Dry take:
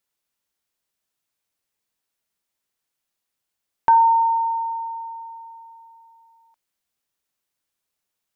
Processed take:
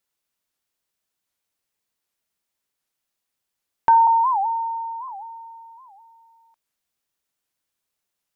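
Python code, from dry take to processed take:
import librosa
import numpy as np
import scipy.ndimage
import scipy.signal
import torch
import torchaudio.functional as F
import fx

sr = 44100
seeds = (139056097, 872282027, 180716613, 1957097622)

y = fx.steep_lowpass(x, sr, hz=1000.0, slope=96, at=(4.07, 5.09))
y = fx.record_warp(y, sr, rpm=78.0, depth_cents=250.0)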